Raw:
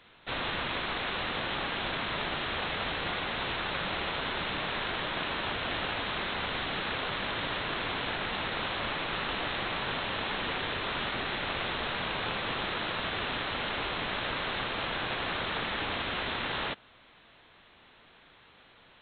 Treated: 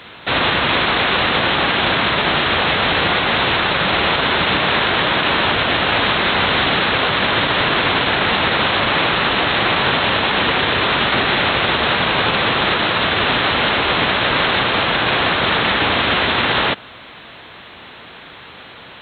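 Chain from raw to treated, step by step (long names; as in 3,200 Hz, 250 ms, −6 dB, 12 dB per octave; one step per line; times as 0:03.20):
high-pass filter 63 Hz
boost into a limiter +25.5 dB
level −5.5 dB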